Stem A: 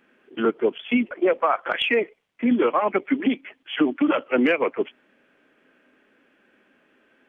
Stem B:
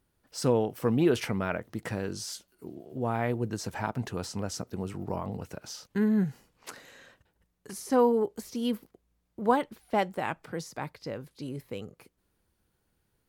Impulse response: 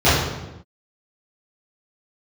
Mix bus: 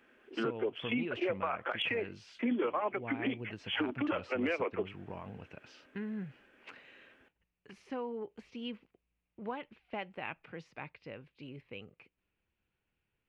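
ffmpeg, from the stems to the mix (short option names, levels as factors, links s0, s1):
-filter_complex "[0:a]highpass=240,acompressor=threshold=0.0398:ratio=2.5,volume=0.708[s0];[1:a]acompressor=threshold=0.0447:ratio=3,lowpass=f=2600:t=q:w=4.6,volume=0.299[s1];[s0][s1]amix=inputs=2:normalize=0,alimiter=limit=0.0668:level=0:latency=1:release=127"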